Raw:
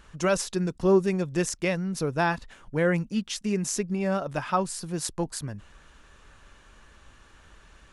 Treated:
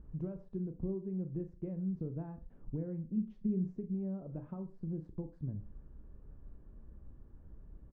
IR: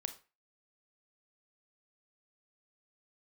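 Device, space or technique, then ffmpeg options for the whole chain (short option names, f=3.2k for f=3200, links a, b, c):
television next door: -filter_complex "[0:a]acompressor=threshold=-36dB:ratio=5,lowpass=280[a];[1:a]atrim=start_sample=2205[b];[a][b]afir=irnorm=-1:irlink=0,asplit=3[c][d][e];[c]afade=t=out:st=3.16:d=0.02[f];[d]aecho=1:1:5.4:0.7,afade=t=in:st=3.16:d=0.02,afade=t=out:st=3.72:d=0.02[g];[e]afade=t=in:st=3.72:d=0.02[h];[f][g][h]amix=inputs=3:normalize=0,volume=4dB"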